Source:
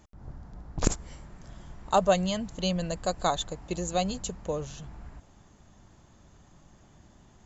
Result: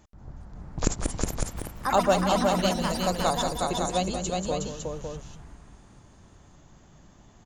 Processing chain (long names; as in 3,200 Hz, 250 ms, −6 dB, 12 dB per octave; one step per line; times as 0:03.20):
delay with pitch and tempo change per echo 408 ms, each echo +5 semitones, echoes 3, each echo −6 dB
multi-tap delay 186/365/556 ms −9/−3.5/−6 dB